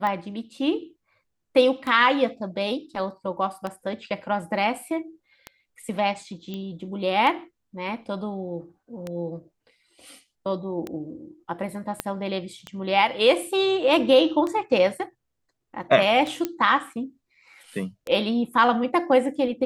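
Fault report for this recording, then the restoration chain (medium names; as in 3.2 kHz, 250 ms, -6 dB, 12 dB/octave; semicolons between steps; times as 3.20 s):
tick 33 1/3 rpm -17 dBFS
6.54 s: pop -21 dBFS
12.00 s: pop -10 dBFS
16.45 s: pop -12 dBFS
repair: de-click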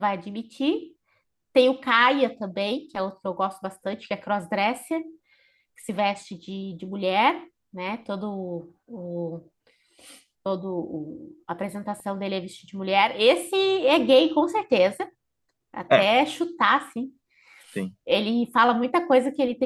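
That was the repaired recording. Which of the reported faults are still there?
12.00 s: pop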